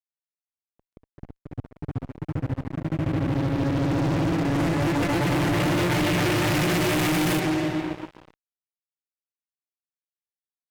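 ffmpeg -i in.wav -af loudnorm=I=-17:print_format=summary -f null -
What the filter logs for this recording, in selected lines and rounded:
Input Integrated:    -24.4 LUFS
Input True Peak:     -17.9 dBTP
Input LRA:            19.6 LU
Input Threshold:     -35.6 LUFS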